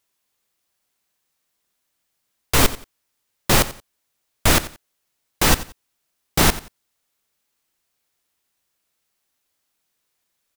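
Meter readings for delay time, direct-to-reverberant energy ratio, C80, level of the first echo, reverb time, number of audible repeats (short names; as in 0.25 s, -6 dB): 89 ms, none, none, -16.5 dB, none, 2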